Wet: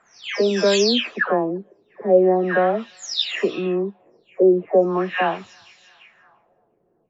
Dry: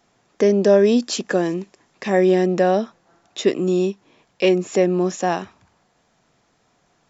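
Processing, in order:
every frequency bin delayed by itself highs early, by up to 429 ms
tilt shelving filter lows −6 dB, about 650 Hz
delay with a high-pass on its return 345 ms, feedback 68%, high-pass 1,900 Hz, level −20 dB
auto-filter low-pass sine 0.4 Hz 410–4,700 Hz

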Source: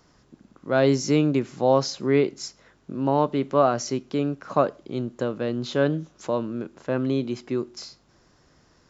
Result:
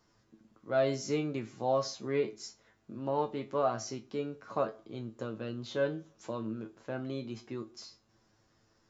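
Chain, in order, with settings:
tuned comb filter 110 Hz, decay 0.18 s, harmonics all, mix 90%
on a send: convolution reverb RT60 0.50 s, pre-delay 47 ms, DRR 21.5 dB
on the sum: level −3 dB

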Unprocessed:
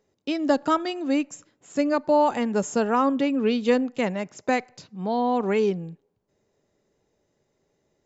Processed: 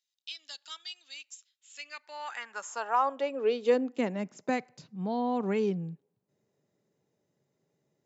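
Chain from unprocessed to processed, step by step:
high-pass filter sweep 3,600 Hz → 140 Hz, 0:01.57–0:04.63
level −8 dB

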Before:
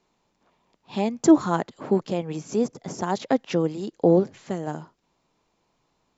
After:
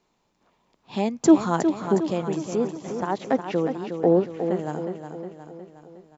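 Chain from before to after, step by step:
0:02.55–0:04.59: bass and treble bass −5 dB, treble −14 dB
repeating echo 362 ms, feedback 54%, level −8 dB

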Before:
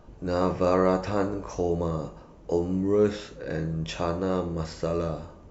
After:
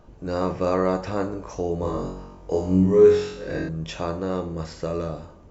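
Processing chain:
0:01.80–0:03.69: flutter between parallel walls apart 3.7 metres, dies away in 0.63 s

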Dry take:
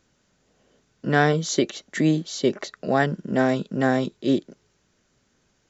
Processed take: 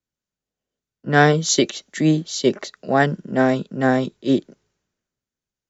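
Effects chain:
pitch vibrato 0.42 Hz 7 cents
multiband upward and downward expander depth 70%
level +3 dB

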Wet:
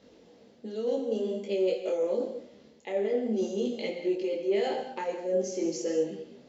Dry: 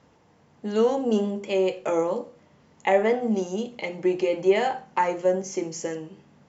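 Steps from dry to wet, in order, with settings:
octave-band graphic EQ 125/250/500/1,000/4,000 Hz −8/+8/+11/−8/+11 dB
reversed playback
downward compressor 6 to 1, threshold −24 dBFS, peak gain reduction 17.5 dB
reversed playback
reverb whose tail is shaped and stops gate 230 ms flat, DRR 6 dB
micro pitch shift up and down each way 17 cents

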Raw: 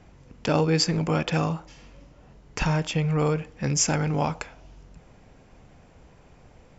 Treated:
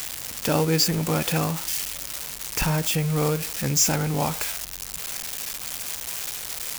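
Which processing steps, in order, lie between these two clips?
spike at every zero crossing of −17 dBFS

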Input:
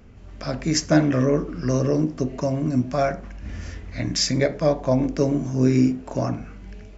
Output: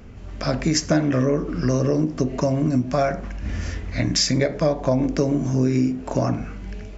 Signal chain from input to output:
downward compressor 4 to 1, threshold −23 dBFS, peak gain reduction 9.5 dB
level +6 dB

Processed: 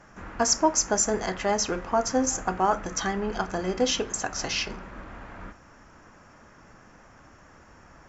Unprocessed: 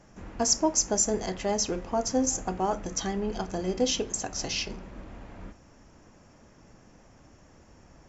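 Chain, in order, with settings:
parametric band 1,400 Hz +11.5 dB 1.4 octaves

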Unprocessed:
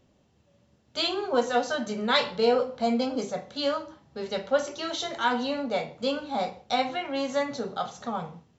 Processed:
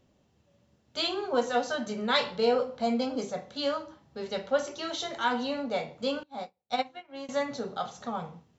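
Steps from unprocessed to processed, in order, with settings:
0:06.23–0:07.29: expander for the loud parts 2.5 to 1, over −44 dBFS
level −2.5 dB

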